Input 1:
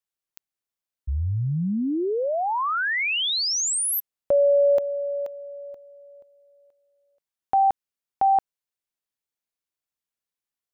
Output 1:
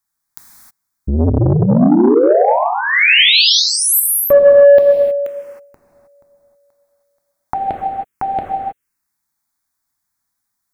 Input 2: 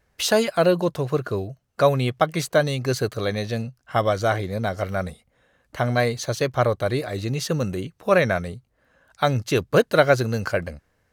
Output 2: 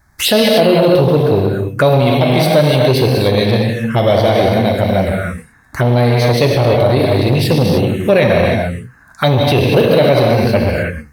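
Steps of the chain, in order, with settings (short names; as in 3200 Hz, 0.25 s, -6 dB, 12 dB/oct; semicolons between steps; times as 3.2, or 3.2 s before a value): non-linear reverb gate 0.34 s flat, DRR -0.5 dB; envelope phaser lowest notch 490 Hz, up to 1300 Hz, full sweep at -19 dBFS; maximiser +14 dB; core saturation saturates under 320 Hz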